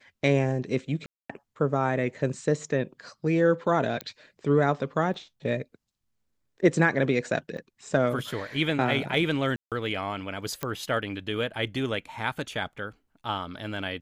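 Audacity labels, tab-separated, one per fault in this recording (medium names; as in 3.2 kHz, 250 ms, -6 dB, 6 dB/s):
1.060000	1.290000	dropout 235 ms
4.010000	4.010000	pop -17 dBFS
5.140000	5.140000	dropout 2.3 ms
7.570000	7.580000	dropout 5.5 ms
9.560000	9.720000	dropout 157 ms
10.630000	10.630000	pop -14 dBFS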